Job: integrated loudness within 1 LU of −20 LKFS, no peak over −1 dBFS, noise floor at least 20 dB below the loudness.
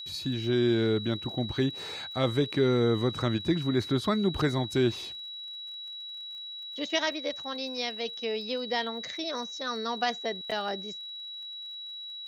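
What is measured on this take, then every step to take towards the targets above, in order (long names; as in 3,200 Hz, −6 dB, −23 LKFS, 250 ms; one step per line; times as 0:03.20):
crackle rate 40 per second; interfering tone 3,900 Hz; level of the tone −38 dBFS; integrated loudness −30.0 LKFS; sample peak −13.0 dBFS; target loudness −20.0 LKFS
→ click removal
notch filter 3,900 Hz, Q 30
level +10 dB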